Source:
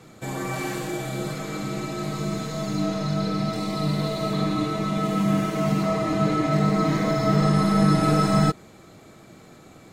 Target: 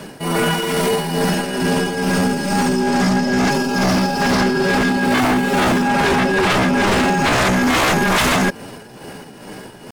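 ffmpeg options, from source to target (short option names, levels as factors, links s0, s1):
-af "tremolo=f=2.3:d=0.58,aeval=exprs='0.376*sin(PI/2*5.62*val(0)/0.376)':c=same,asetrate=55563,aresample=44100,atempo=0.793701,volume=0.668"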